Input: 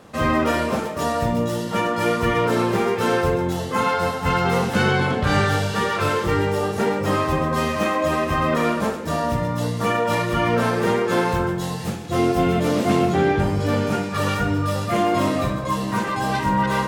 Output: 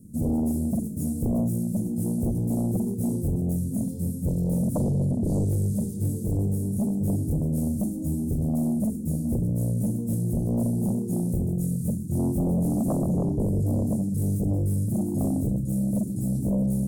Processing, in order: elliptic band-stop 240–9200 Hz, stop band 70 dB; sine folder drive 9 dB, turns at -12 dBFS; trim -8.5 dB

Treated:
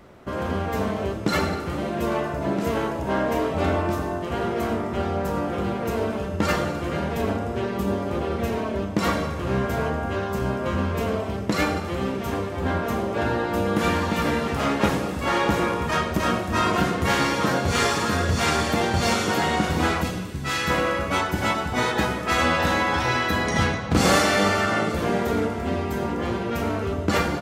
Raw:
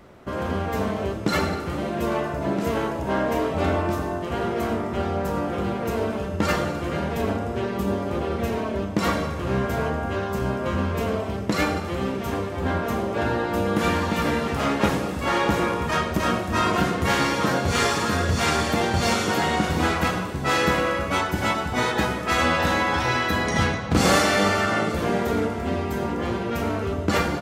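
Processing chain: 20.01–20.69 s: peaking EQ 1.5 kHz -> 420 Hz -11 dB 2.2 oct

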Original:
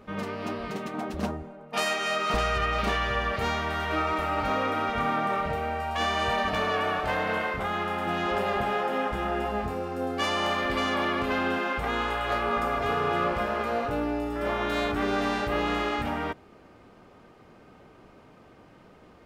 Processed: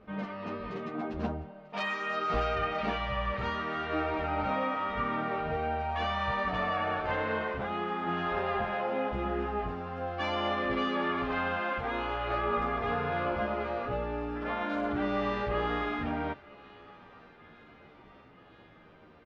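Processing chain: distance through air 230 m; on a send: thinning echo 942 ms, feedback 74%, high-pass 860 Hz, level -19 dB; on the sum: endless flanger 11.2 ms -0.67 Hz

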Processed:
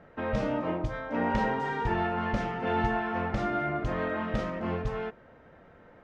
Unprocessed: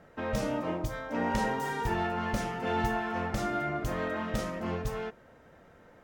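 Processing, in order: low-pass 3.1 kHz 12 dB/octave; trim +2 dB

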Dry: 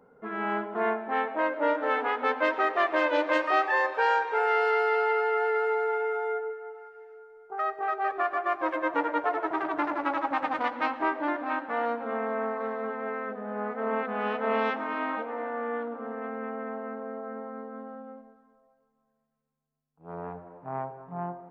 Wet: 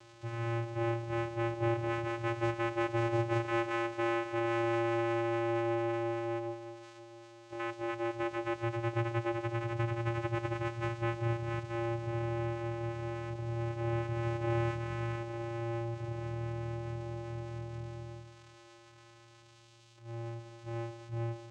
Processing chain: zero-crossing glitches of -25 dBFS; vocoder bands 4, square 116 Hz; trim -5 dB

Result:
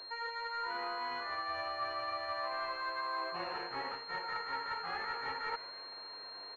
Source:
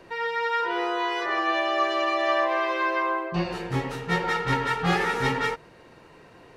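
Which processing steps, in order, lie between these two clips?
high-pass 1.1 kHz 12 dB/octave; tilt EQ -2 dB/octave; reverse; compression 8:1, threshold -41 dBFS, peak gain reduction 17 dB; reverse; frequency-shifting echo 154 ms, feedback 58%, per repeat +100 Hz, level -17 dB; class-D stage that switches slowly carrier 4.2 kHz; trim +6 dB

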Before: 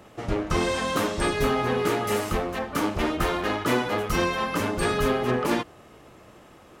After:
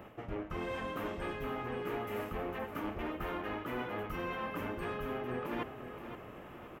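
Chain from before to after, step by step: high-order bell 6.2 kHz -14.5 dB; reverse; compression 8:1, threshold -36 dBFS, peak gain reduction 17 dB; reverse; feedback delay 521 ms, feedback 41%, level -10.5 dB

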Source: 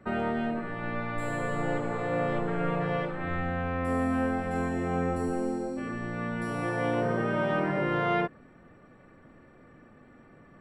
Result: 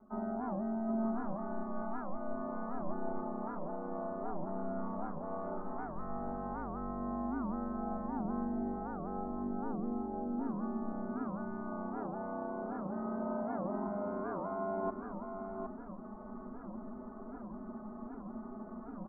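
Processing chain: steep low-pass 1.8 kHz 96 dB/octave; reverse; compression 8:1, threshold -44 dBFS, peak gain reduction 20 dB; reverse; static phaser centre 460 Hz, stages 6; granular stretch 1.8×, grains 21 ms; on a send: delay 763 ms -6 dB; on the sum: warped record 78 rpm, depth 250 cents; trim +12 dB

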